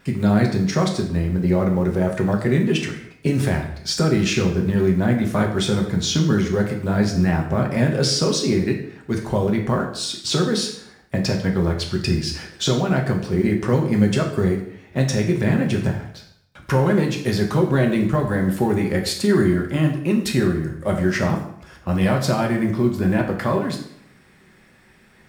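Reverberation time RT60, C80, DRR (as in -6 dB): 0.70 s, 10.5 dB, 1.0 dB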